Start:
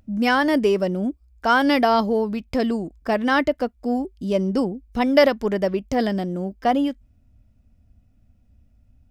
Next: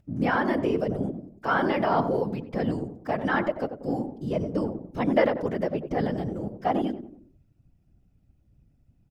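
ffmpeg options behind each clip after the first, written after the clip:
-filter_complex "[0:a]acrossover=split=2700[a][b];[b]acompressor=threshold=-46dB:ratio=4:attack=1:release=60[c];[a][c]amix=inputs=2:normalize=0,asplit=2[d][e];[e]adelay=92,lowpass=f=980:p=1,volume=-8dB,asplit=2[f][g];[g]adelay=92,lowpass=f=980:p=1,volume=0.45,asplit=2[h][i];[i]adelay=92,lowpass=f=980:p=1,volume=0.45,asplit=2[j][k];[k]adelay=92,lowpass=f=980:p=1,volume=0.45,asplit=2[l][m];[m]adelay=92,lowpass=f=980:p=1,volume=0.45[n];[d][f][h][j][l][n]amix=inputs=6:normalize=0,afftfilt=real='hypot(re,im)*cos(2*PI*random(0))':imag='hypot(re,im)*sin(2*PI*random(1))':win_size=512:overlap=0.75"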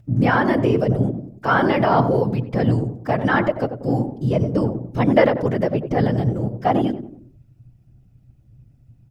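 -af "equalizer=f=120:t=o:w=0.35:g=14,volume=6.5dB"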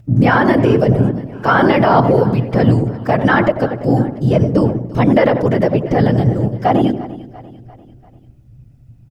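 -af "aecho=1:1:344|688|1032|1376:0.106|0.0519|0.0254|0.0125,alimiter=level_in=7.5dB:limit=-1dB:release=50:level=0:latency=1,volume=-1dB"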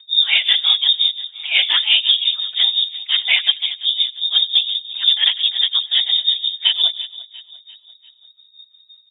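-af "tremolo=f=5.7:d=0.82,lowpass=f=3.2k:t=q:w=0.5098,lowpass=f=3.2k:t=q:w=0.6013,lowpass=f=3.2k:t=q:w=0.9,lowpass=f=3.2k:t=q:w=2.563,afreqshift=-3800,volume=-1dB"

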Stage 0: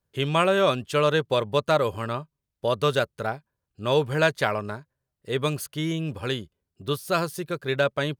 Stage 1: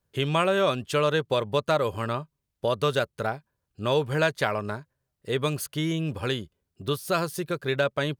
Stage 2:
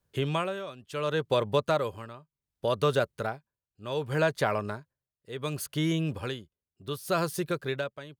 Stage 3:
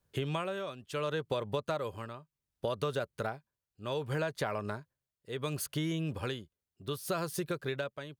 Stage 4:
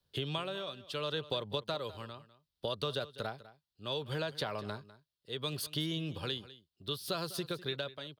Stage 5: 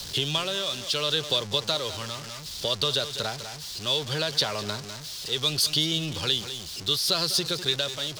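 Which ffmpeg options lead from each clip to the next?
-af "acompressor=threshold=-30dB:ratio=1.5,volume=2.5dB"
-filter_complex "[0:a]tremolo=f=0.68:d=0.87,acrossover=split=850|1300[a][b][c];[c]alimiter=level_in=1dB:limit=-24dB:level=0:latency=1:release=65,volume=-1dB[d];[a][b][d]amix=inputs=3:normalize=0"
-af "acompressor=threshold=-31dB:ratio=4"
-filter_complex "[0:a]acrossover=split=160|1700|4600[a][b][c][d];[c]aexciter=amount=6.7:drive=5.1:freq=3.2k[e];[a][b][e][d]amix=inputs=4:normalize=0,aecho=1:1:201:0.141,volume=-3.5dB"
-af "aeval=exprs='val(0)+0.5*0.00891*sgn(val(0))':c=same,equalizer=f=5.4k:w=0.79:g=14,volume=4dB"

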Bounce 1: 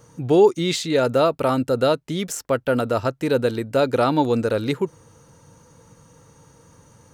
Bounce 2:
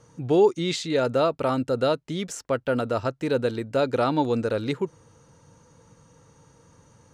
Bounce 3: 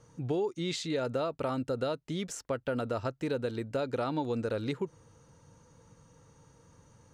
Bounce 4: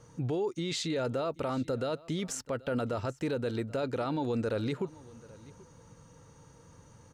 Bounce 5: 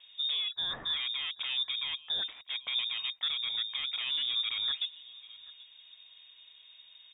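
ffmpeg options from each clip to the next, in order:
-af "lowpass=8.1k,volume=-4dB"
-af "lowshelf=f=67:g=6.5,acompressor=threshold=-23dB:ratio=6,volume=-5dB"
-af "alimiter=level_in=4dB:limit=-24dB:level=0:latency=1:release=11,volume=-4dB,aecho=1:1:782:0.0794,volume=3.5dB"
-filter_complex "[0:a]acrossover=split=370|1000|1900[a][b][c][d];[b]aeval=exprs='0.0168*(abs(mod(val(0)/0.0168+3,4)-2)-1)':c=same[e];[a][e][c][d]amix=inputs=4:normalize=0,lowpass=f=3.2k:t=q:w=0.5098,lowpass=f=3.2k:t=q:w=0.6013,lowpass=f=3.2k:t=q:w=0.9,lowpass=f=3.2k:t=q:w=2.563,afreqshift=-3800"

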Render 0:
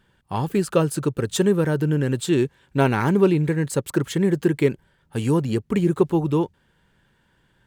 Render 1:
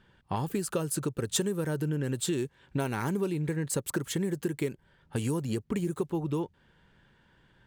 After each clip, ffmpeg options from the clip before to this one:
-filter_complex "[0:a]acrossover=split=5800[a][b];[a]acompressor=threshold=-28dB:ratio=6[c];[b]agate=range=-11dB:threshold=-57dB:ratio=16:detection=peak[d];[c][d]amix=inputs=2:normalize=0"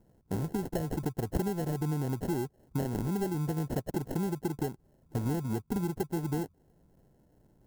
-af "acrusher=samples=37:mix=1:aa=0.000001,equalizer=f=2.7k:t=o:w=2.6:g=-14.5"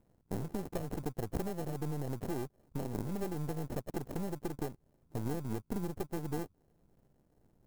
-af "aeval=exprs='if(lt(val(0),0),0.251*val(0),val(0))':c=same,volume=-2dB"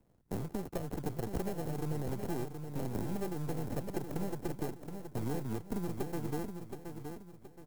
-filter_complex "[0:a]acrossover=split=110|1000|2800[a][b][c][d];[a]acrusher=samples=32:mix=1:aa=0.000001:lfo=1:lforange=19.2:lforate=2.9[e];[e][b][c][d]amix=inputs=4:normalize=0,aecho=1:1:722|1444|2166|2888:0.447|0.161|0.0579|0.0208"

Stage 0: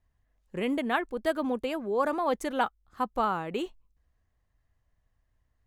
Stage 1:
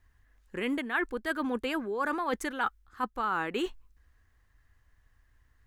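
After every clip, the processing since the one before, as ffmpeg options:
-af "equalizer=f=160:t=o:w=0.67:g=-9,equalizer=f=630:t=o:w=0.67:g=-8,equalizer=f=1.6k:t=o:w=0.67:g=7,areverse,acompressor=threshold=-36dB:ratio=6,areverse,volume=8dB"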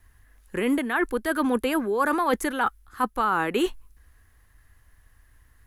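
-filter_complex "[0:a]equalizer=f=11k:t=o:w=0.41:g=15,acrossover=split=420|1200[a][b][c];[c]alimiter=level_in=7dB:limit=-24dB:level=0:latency=1:release=12,volume=-7dB[d];[a][b][d]amix=inputs=3:normalize=0,volume=8dB"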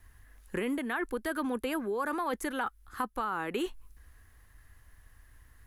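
-af "acompressor=threshold=-31dB:ratio=4"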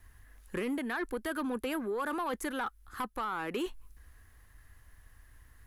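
-af "asoftclip=type=tanh:threshold=-26.5dB"

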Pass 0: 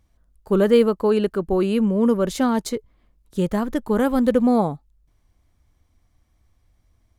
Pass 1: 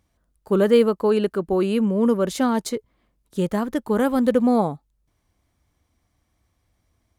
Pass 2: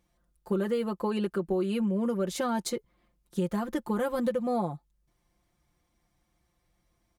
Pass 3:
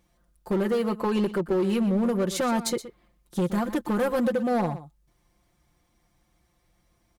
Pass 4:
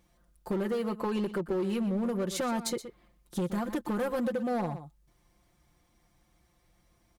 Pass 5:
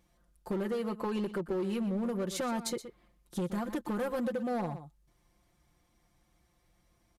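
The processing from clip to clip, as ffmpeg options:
-af "highpass=f=120:p=1,equalizer=f=9.3k:w=5.8:g=2"
-af "aecho=1:1:5.7:0.77,acompressor=threshold=-21dB:ratio=6,volume=-4.5dB"
-af "volume=26dB,asoftclip=hard,volume=-26dB,aecho=1:1:122:0.2,volume=5.5dB"
-af "acompressor=threshold=-33dB:ratio=2"
-af "aresample=32000,aresample=44100,volume=-2.5dB"

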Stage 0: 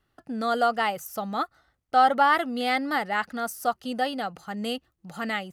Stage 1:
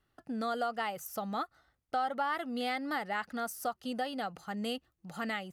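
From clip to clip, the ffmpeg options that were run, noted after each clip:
-af "acompressor=threshold=-28dB:ratio=3,volume=-4dB"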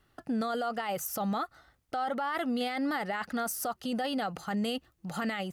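-af "alimiter=level_in=9dB:limit=-24dB:level=0:latency=1:release=14,volume=-9dB,volume=8.5dB"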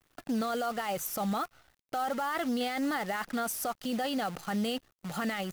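-af "acrusher=bits=8:dc=4:mix=0:aa=0.000001"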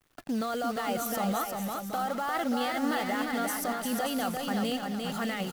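-af "aecho=1:1:350|577.5|725.4|821.5|884:0.631|0.398|0.251|0.158|0.1"

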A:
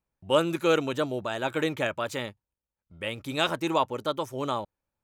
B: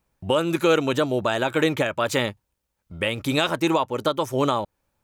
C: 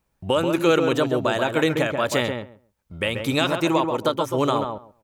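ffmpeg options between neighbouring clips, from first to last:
-filter_complex "[0:a]asplit=2[a][b];[b]acompressor=threshold=-33dB:ratio=6,volume=2dB[c];[a][c]amix=inputs=2:normalize=0,alimiter=limit=-15dB:level=0:latency=1:release=322,volume=5.5dB"
-filter_complex "[0:a]asplit=2[a][b];[b]adelay=135,lowpass=f=1.4k:p=1,volume=-4.5dB,asplit=2[c][d];[d]adelay=135,lowpass=f=1.4k:p=1,volume=0.16,asplit=2[e][f];[f]adelay=135,lowpass=f=1.4k:p=1,volume=0.16[g];[a][c][e][g]amix=inputs=4:normalize=0"

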